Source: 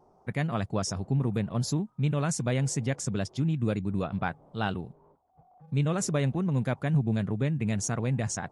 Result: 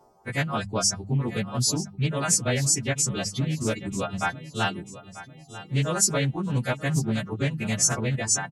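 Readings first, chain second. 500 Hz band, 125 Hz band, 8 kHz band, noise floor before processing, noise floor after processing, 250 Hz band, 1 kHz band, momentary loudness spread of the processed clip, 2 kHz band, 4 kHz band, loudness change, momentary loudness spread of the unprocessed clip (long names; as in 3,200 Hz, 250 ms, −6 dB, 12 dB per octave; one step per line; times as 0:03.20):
+2.5 dB, +0.5 dB, +12.5 dB, −63 dBFS, −49 dBFS, 0.0 dB, +4.5 dB, 9 LU, +7.0 dB, +11.0 dB, +4.0 dB, 5 LU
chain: every partial snapped to a pitch grid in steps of 2 semitones
reverb reduction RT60 0.99 s
mains-hum notches 50/100/150/200 Hz
on a send: repeating echo 941 ms, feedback 43%, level −15 dB
on the sum: highs frequency-modulated by the lows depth 0.27 ms
level +4 dB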